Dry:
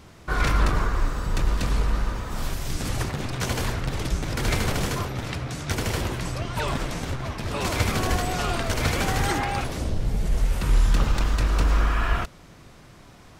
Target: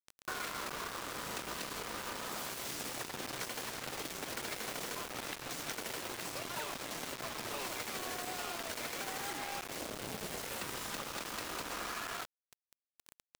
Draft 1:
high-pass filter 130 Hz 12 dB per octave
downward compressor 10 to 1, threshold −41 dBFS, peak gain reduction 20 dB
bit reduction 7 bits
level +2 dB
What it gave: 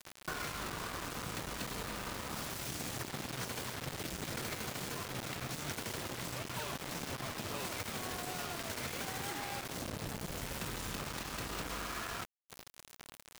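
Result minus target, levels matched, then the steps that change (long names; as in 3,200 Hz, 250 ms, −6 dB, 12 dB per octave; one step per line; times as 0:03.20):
125 Hz band +9.0 dB
change: high-pass filter 320 Hz 12 dB per octave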